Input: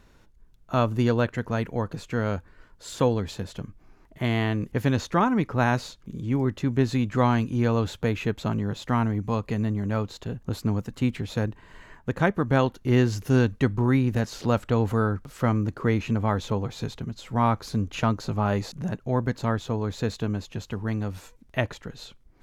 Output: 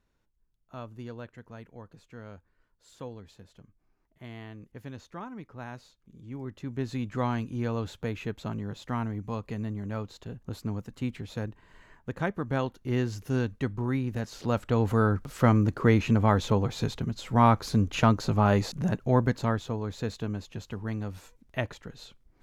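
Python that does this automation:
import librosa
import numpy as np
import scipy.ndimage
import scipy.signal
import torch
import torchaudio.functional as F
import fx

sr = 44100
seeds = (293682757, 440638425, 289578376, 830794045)

y = fx.gain(x, sr, db=fx.line((5.95, -18.5), (7.04, -7.5), (14.17, -7.5), (15.24, 2.0), (19.17, 2.0), (19.78, -5.0)))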